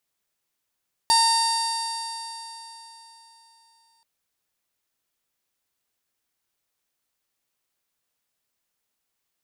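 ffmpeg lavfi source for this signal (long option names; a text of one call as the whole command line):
ffmpeg -f lavfi -i "aevalsrc='0.133*pow(10,-3*t/3.7)*sin(2*PI*913.46*t)+0.0266*pow(10,-3*t/3.7)*sin(2*PI*1829.65*t)+0.0158*pow(10,-3*t/3.7)*sin(2*PI*2751.3*t)+0.0299*pow(10,-3*t/3.7)*sin(2*PI*3681.1*t)+0.119*pow(10,-3*t/3.7)*sin(2*PI*4621.71*t)+0.0335*pow(10,-3*t/3.7)*sin(2*PI*5575.73*t)+0.015*pow(10,-3*t/3.7)*sin(2*PI*6545.71*t)+0.0266*pow(10,-3*t/3.7)*sin(2*PI*7534.1*t)+0.0376*pow(10,-3*t/3.7)*sin(2*PI*8543.31*t)+0.0335*pow(10,-3*t/3.7)*sin(2*PI*9575.62*t)+0.0335*pow(10,-3*t/3.7)*sin(2*PI*10633.26*t)':duration=2.93:sample_rate=44100" out.wav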